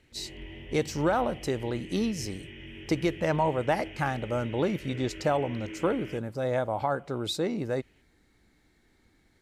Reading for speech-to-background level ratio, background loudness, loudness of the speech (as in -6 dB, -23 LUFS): 13.5 dB, -43.5 LUFS, -30.0 LUFS